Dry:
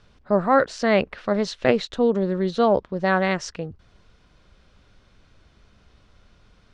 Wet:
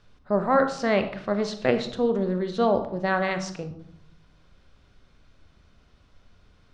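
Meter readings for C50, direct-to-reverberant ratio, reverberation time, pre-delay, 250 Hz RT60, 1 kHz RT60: 10.0 dB, 7.5 dB, 0.70 s, 25 ms, 1.0 s, 0.70 s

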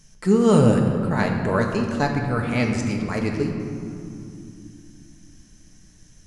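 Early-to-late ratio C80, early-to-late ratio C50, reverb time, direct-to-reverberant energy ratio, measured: 5.5 dB, 4.5 dB, 2.6 s, 1.5 dB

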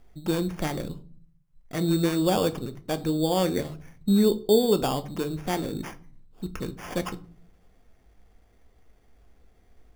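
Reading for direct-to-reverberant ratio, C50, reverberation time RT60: 10.5 dB, 18.5 dB, 0.45 s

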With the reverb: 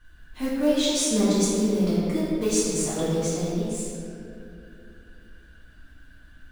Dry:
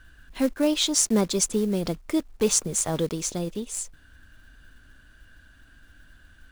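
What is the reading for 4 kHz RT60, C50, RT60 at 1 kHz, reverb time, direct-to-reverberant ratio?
1.5 s, -3.0 dB, 2.3 s, 2.6 s, -10.5 dB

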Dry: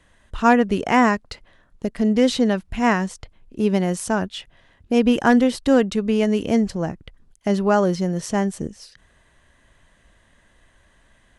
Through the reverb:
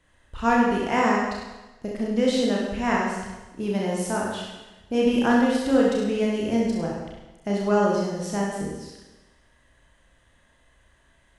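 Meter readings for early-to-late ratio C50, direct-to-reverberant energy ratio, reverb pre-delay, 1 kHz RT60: 0.5 dB, -3.5 dB, 30 ms, 1.1 s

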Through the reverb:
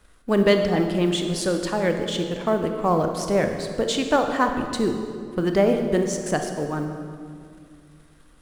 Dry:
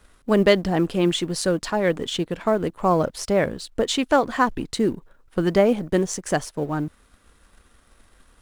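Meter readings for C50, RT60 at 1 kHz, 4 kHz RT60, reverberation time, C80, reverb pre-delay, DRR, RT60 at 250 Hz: 6.0 dB, 2.0 s, 1.5 s, 2.2 s, 7.0 dB, 27 ms, 5.0 dB, 2.7 s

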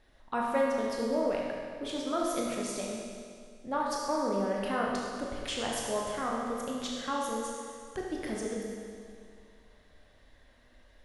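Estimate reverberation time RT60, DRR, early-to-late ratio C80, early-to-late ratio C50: 2.2 s, -3.0 dB, 1.0 dB, -0.5 dB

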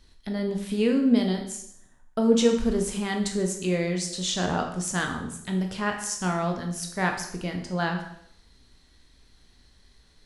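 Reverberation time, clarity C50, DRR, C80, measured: 0.70 s, 7.5 dB, 2.5 dB, 10.5 dB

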